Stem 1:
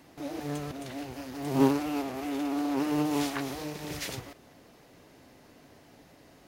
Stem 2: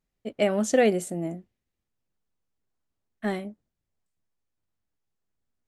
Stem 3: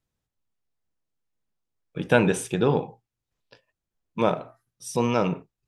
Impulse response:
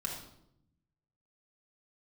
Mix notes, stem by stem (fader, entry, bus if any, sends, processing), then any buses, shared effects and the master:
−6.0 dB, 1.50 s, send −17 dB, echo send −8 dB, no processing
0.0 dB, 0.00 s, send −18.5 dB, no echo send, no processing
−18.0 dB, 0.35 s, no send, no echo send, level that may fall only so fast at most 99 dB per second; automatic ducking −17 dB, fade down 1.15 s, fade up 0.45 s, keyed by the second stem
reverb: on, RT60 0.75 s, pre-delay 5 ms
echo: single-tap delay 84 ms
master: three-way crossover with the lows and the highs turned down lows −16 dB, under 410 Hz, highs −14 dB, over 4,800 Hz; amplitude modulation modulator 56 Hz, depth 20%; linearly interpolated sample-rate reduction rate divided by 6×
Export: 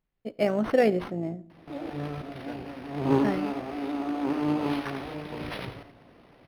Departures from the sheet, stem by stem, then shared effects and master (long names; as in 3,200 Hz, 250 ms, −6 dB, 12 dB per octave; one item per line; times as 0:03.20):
stem 1 −6.0 dB → +1.5 dB
master: missing three-way crossover with the lows and the highs turned down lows −16 dB, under 410 Hz, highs −14 dB, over 4,800 Hz